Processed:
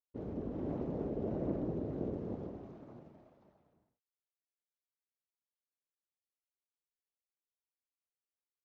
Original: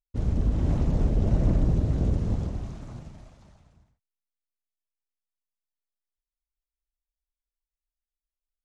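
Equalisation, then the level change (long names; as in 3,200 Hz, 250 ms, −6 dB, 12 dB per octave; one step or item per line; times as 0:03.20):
resonant band-pass 390 Hz, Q 1.4
high-frequency loss of the air 85 metres
spectral tilt +2 dB per octave
+1.0 dB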